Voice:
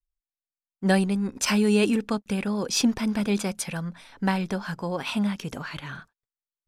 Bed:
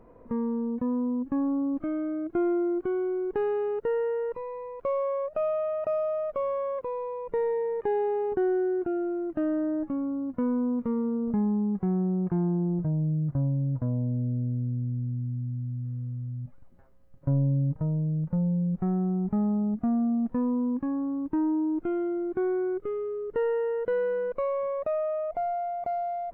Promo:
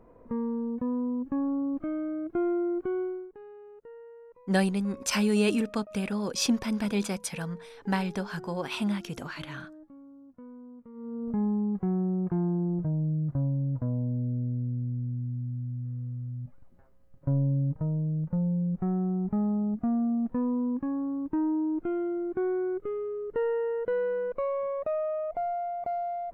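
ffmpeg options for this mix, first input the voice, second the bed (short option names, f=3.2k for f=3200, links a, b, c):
-filter_complex "[0:a]adelay=3650,volume=-3.5dB[a];[1:a]volume=16.5dB,afade=t=out:st=3.01:d=0.3:silence=0.125893,afade=t=in:st=10.93:d=0.5:silence=0.11885[b];[a][b]amix=inputs=2:normalize=0"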